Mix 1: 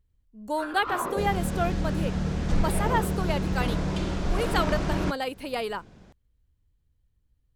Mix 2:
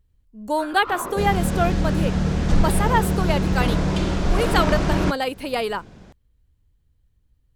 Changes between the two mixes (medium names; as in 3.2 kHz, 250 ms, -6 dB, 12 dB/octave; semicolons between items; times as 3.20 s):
speech +6.0 dB; second sound +6.5 dB